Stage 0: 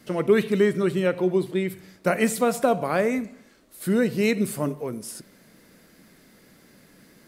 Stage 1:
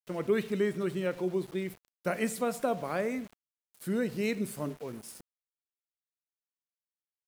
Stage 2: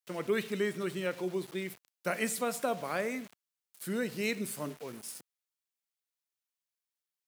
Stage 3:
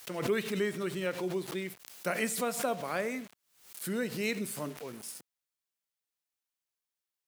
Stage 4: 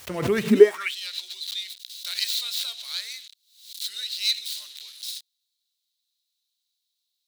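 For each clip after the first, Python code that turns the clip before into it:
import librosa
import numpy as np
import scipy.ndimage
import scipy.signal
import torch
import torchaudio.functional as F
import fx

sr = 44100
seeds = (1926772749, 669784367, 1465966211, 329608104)

y1 = np.where(np.abs(x) >= 10.0 ** (-38.0 / 20.0), x, 0.0)
y1 = F.gain(torch.from_numpy(y1), -9.0).numpy()
y2 = scipy.signal.sosfilt(scipy.signal.butter(2, 110.0, 'highpass', fs=sr, output='sos'), y1)
y2 = fx.tilt_shelf(y2, sr, db=-4.0, hz=1100.0)
y3 = fx.pre_swell(y2, sr, db_per_s=100.0)
y4 = fx.tracing_dist(y3, sr, depth_ms=0.21)
y4 = fx.filter_sweep_highpass(y4, sr, from_hz=81.0, to_hz=3900.0, start_s=0.38, end_s=0.95, q=7.6)
y4 = F.gain(torch.from_numpy(y4), 6.0).numpy()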